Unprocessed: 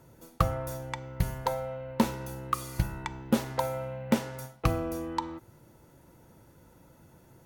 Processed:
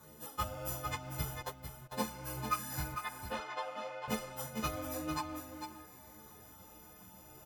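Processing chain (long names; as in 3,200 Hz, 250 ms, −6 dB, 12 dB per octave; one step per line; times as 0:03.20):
every partial snapped to a pitch grid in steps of 3 semitones
in parallel at −5 dB: sample-and-hold swept by an LFO 17×, swing 60% 0.32 Hz
0:02.94–0:04.08: on the sum: band-pass filter 620–2,900 Hz
harmonic generator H 7 −25 dB, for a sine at −6 dBFS
downward compressor 2.5 to 1, threshold −37 dBFS, peak gain reduction 14.5 dB
0:01.41–0:01.92: noise gate −33 dBFS, range −23 dB
soft clipping −20 dBFS, distortion −24 dB
on a send: single-tap delay 450 ms −7.5 dB
on the sum: string-ensemble chorus
level +2.5 dB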